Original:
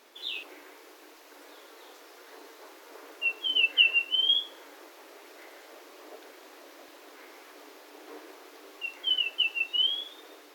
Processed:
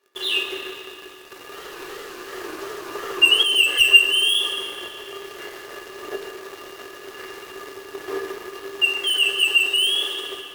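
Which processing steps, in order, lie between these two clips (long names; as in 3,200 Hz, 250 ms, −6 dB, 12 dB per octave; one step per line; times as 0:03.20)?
wavefolder on the positive side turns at −17 dBFS
high-pass filter 50 Hz
low-shelf EQ 160 Hz −10.5 dB
leveller curve on the samples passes 5
hollow resonant body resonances 390/1,200/1,700/2,800 Hz, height 17 dB, ringing for 90 ms
convolution reverb RT60 2.7 s, pre-delay 5 ms, DRR 5 dB
0:01.43–0:03.43: feedback echo with a swinging delay time 82 ms, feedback 78%, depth 192 cents, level −3 dB
level −6.5 dB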